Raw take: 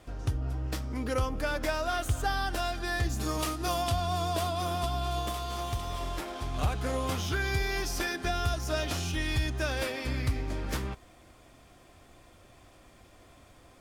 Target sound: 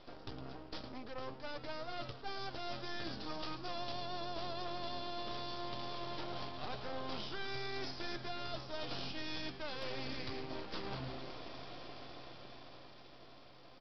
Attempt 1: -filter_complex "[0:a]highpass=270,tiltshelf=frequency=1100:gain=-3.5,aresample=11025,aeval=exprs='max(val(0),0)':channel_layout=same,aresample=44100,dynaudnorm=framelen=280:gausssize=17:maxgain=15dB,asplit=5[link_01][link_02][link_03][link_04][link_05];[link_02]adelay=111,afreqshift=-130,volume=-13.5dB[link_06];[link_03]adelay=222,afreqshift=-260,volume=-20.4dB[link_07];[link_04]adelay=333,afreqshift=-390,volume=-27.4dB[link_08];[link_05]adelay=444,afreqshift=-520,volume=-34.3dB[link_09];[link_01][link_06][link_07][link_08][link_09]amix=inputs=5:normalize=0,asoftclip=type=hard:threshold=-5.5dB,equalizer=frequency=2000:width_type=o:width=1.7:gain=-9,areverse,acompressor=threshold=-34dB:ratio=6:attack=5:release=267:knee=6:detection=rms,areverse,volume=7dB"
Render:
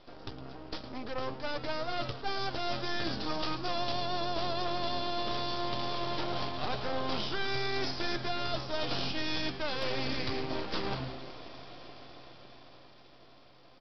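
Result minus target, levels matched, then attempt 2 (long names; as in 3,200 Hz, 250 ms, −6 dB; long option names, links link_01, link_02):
downward compressor: peak gain reduction −9 dB
-filter_complex "[0:a]highpass=270,tiltshelf=frequency=1100:gain=-3.5,aresample=11025,aeval=exprs='max(val(0),0)':channel_layout=same,aresample=44100,dynaudnorm=framelen=280:gausssize=17:maxgain=15dB,asplit=5[link_01][link_02][link_03][link_04][link_05];[link_02]adelay=111,afreqshift=-130,volume=-13.5dB[link_06];[link_03]adelay=222,afreqshift=-260,volume=-20.4dB[link_07];[link_04]adelay=333,afreqshift=-390,volume=-27.4dB[link_08];[link_05]adelay=444,afreqshift=-520,volume=-34.3dB[link_09];[link_01][link_06][link_07][link_08][link_09]amix=inputs=5:normalize=0,asoftclip=type=hard:threshold=-5.5dB,equalizer=frequency=2000:width_type=o:width=1.7:gain=-9,areverse,acompressor=threshold=-44.5dB:ratio=6:attack=5:release=267:knee=6:detection=rms,areverse,volume=7dB"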